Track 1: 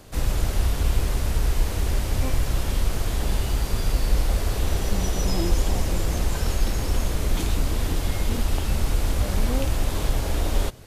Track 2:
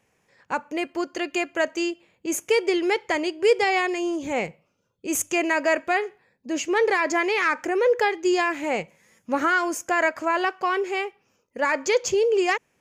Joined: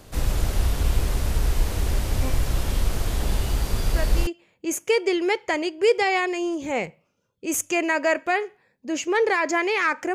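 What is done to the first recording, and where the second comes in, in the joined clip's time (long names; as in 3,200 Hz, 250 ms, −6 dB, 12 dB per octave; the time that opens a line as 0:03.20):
track 1
0:03.84: mix in track 2 from 0:01.45 0.43 s −8 dB
0:04.27: continue with track 2 from 0:01.88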